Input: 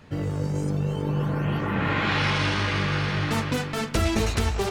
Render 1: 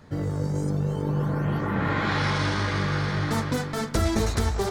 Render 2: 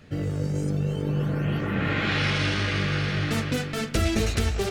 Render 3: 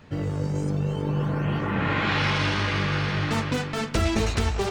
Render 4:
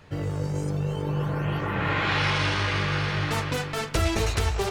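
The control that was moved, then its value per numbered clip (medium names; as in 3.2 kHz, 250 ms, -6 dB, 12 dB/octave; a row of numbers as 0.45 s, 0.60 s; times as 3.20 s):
peaking EQ, frequency: 2.7 kHz, 960 Hz, 12 kHz, 230 Hz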